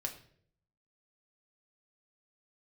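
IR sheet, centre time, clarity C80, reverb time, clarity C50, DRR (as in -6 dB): 13 ms, 14.5 dB, 0.60 s, 11.0 dB, 2.0 dB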